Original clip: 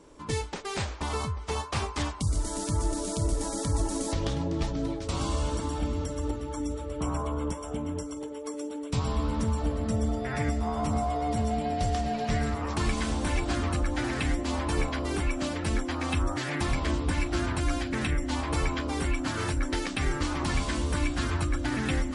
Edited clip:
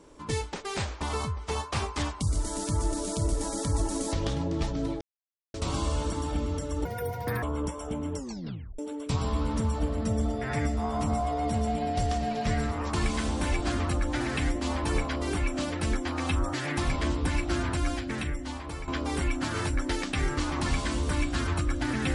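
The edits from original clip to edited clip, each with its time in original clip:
0:05.01: splice in silence 0.53 s
0:06.32–0:07.26: play speed 163%
0:08.00: tape stop 0.62 s
0:17.55–0:18.71: fade out, to −12 dB

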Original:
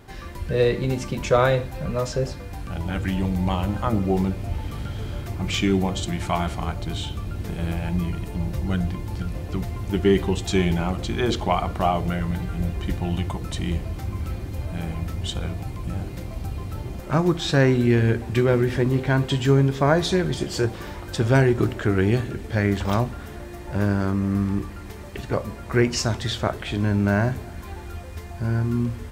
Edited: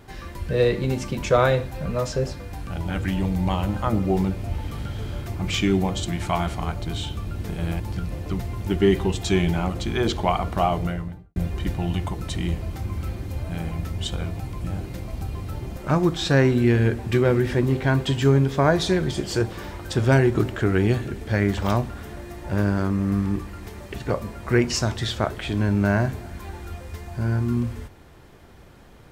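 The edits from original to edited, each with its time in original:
0:07.80–0:09.03: remove
0:11.98–0:12.59: fade out and dull

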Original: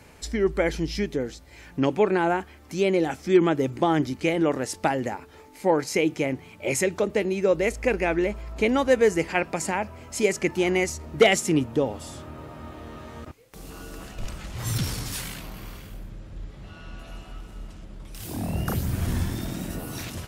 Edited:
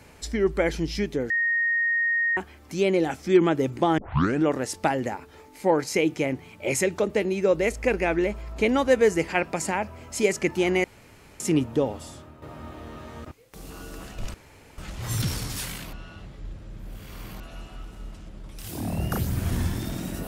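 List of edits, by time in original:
0:01.30–0:02.37: beep over 1,860 Hz −20.5 dBFS
0:03.98: tape start 0.46 s
0:10.84–0:11.40: fill with room tone
0:11.90–0:12.42: fade out, to −11 dB
0:14.34: splice in room tone 0.44 s
0:15.49–0:16.96: reverse

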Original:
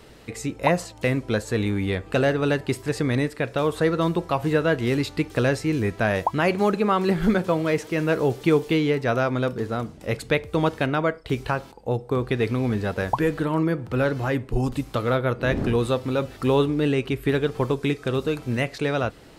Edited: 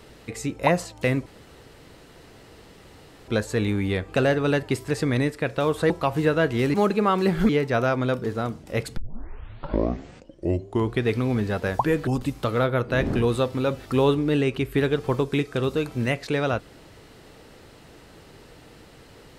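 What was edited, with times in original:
0:01.26: splice in room tone 2.02 s
0:03.88–0:04.18: remove
0:05.02–0:06.57: remove
0:07.32–0:08.83: remove
0:10.31: tape start 2.09 s
0:13.41–0:14.58: remove

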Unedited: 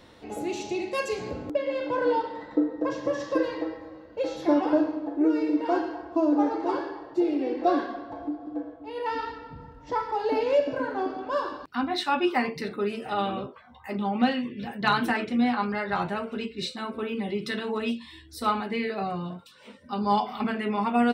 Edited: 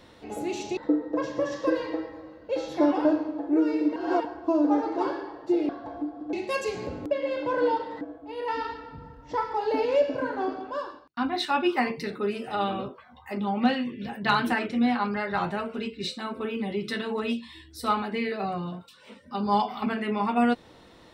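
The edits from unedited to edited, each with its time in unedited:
0:00.77–0:02.45: move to 0:08.59
0:05.64–0:05.93: reverse
0:07.37–0:07.95: remove
0:11.08–0:11.75: fade out

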